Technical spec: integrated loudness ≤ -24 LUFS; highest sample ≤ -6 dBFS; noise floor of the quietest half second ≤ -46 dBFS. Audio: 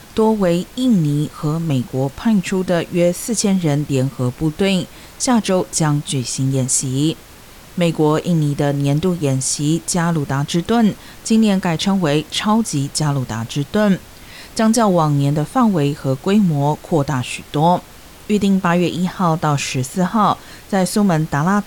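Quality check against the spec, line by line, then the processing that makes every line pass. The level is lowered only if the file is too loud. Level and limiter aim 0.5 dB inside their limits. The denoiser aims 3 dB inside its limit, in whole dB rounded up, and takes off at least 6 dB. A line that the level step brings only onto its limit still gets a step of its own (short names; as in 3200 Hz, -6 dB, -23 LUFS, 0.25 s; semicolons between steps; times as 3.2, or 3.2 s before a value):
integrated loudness -17.5 LUFS: fail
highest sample -4.5 dBFS: fail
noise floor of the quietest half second -41 dBFS: fail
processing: gain -7 dB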